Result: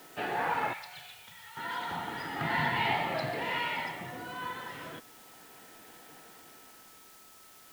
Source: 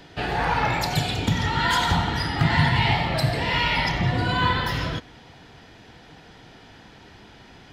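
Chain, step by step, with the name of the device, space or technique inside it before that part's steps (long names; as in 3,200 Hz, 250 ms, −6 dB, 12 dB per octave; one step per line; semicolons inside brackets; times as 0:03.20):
shortwave radio (band-pass filter 270–2,700 Hz; amplitude tremolo 0.34 Hz, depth 69%; steady tone 1,300 Hz −56 dBFS; white noise bed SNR 20 dB)
0:00.73–0:01.57: guitar amp tone stack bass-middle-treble 10-0-10
level −5 dB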